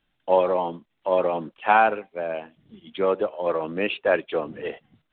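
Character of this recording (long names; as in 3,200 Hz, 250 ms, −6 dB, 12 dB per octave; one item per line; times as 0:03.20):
background noise floor −74 dBFS
spectral slope −2.5 dB per octave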